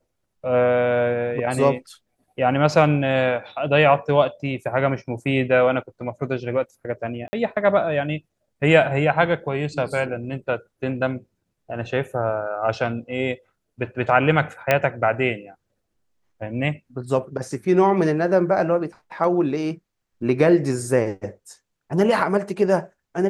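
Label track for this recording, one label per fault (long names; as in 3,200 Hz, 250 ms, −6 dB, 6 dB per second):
7.280000	7.330000	drop-out 50 ms
14.710000	14.710000	click −4 dBFS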